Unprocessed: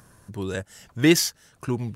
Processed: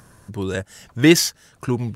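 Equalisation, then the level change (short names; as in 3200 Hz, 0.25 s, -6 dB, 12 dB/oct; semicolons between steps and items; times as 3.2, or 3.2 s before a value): high shelf 10000 Hz -3.5 dB; +4.5 dB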